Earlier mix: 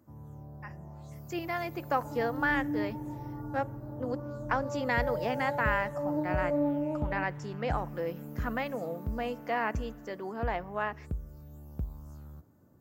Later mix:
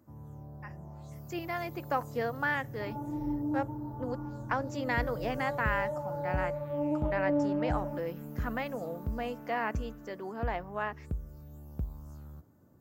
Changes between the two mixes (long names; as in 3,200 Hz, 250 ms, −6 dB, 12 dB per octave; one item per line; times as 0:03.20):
speech: send −10.5 dB
second sound: entry +0.75 s